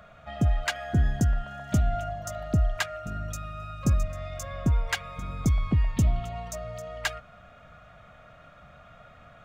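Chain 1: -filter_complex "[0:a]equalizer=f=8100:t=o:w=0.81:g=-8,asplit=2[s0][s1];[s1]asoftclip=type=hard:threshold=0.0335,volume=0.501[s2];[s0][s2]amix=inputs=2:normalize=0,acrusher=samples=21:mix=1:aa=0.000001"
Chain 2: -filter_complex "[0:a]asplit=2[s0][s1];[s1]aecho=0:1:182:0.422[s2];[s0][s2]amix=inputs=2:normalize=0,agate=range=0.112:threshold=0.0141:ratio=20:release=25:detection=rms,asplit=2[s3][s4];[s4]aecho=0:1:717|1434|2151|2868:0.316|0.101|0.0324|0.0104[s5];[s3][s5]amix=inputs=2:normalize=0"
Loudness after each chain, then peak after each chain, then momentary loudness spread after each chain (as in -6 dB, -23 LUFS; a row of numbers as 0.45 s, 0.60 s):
-27.5 LUFS, -28.0 LUFS; -14.0 dBFS, -12.0 dBFS; 9 LU, 12 LU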